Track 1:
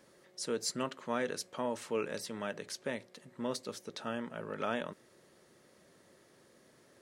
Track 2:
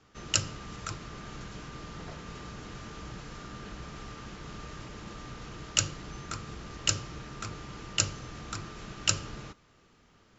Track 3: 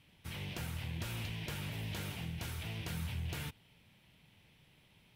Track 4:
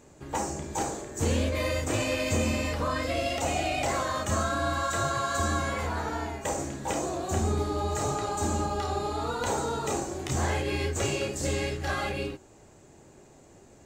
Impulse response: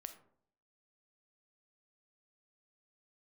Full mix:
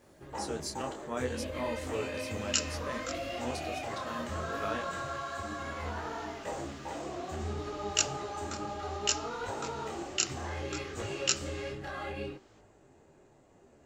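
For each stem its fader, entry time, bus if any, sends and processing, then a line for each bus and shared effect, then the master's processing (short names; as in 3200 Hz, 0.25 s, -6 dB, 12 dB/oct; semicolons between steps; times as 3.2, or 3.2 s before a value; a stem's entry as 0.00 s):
+1.5 dB, 0.00 s, no send, bit-crush 12-bit
+2.0 dB, 2.20 s, no send, HPF 1300 Hz
-10.0 dB, 1.20 s, no send, dry
-1.5 dB, 0.00 s, no send, tone controls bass -3 dB, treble -10 dB; notch 2300 Hz, Q 18; limiter -24 dBFS, peak gain reduction 8 dB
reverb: off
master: detuned doubles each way 22 cents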